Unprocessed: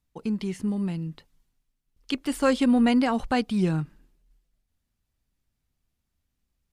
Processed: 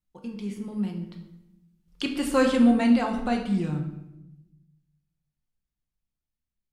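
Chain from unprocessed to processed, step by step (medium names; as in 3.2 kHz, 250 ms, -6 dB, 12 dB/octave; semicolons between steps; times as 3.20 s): Doppler pass-by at 2.03 s, 20 m/s, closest 15 m; simulated room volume 310 m³, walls mixed, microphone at 0.91 m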